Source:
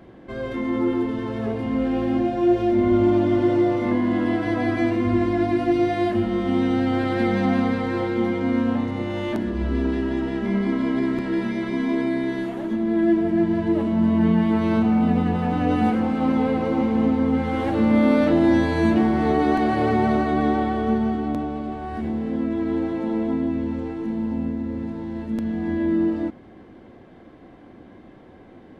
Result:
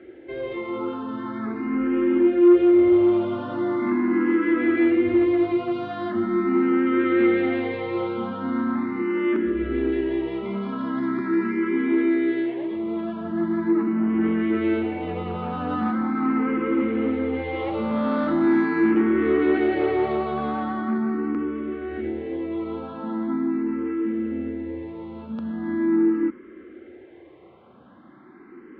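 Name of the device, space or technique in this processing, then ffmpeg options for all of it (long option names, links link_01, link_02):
barber-pole phaser into a guitar amplifier: -filter_complex "[0:a]asplit=2[link_01][link_02];[link_02]afreqshift=0.41[link_03];[link_01][link_03]amix=inputs=2:normalize=1,asoftclip=type=tanh:threshold=-16dB,highpass=95,equalizer=frequency=110:width_type=q:width=4:gain=-10,equalizer=frequency=170:width_type=q:width=4:gain=-5,equalizer=frequency=360:width_type=q:width=4:gain=9,equalizer=frequency=700:width_type=q:width=4:gain=-6,equalizer=frequency=1300:width_type=q:width=4:gain=9,equalizer=frequency=2100:width_type=q:width=4:gain=5,lowpass=frequency=3700:width=0.5412,lowpass=frequency=3700:width=1.3066"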